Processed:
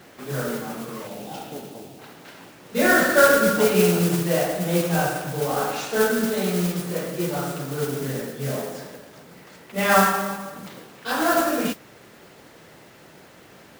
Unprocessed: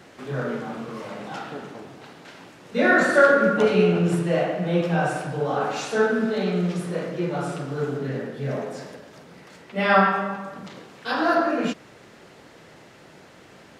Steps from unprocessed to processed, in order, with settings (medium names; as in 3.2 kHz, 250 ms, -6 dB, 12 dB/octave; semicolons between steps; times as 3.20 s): 1.07–1.99 s: high-order bell 1.5 kHz -11 dB 1.3 oct; modulation noise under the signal 11 dB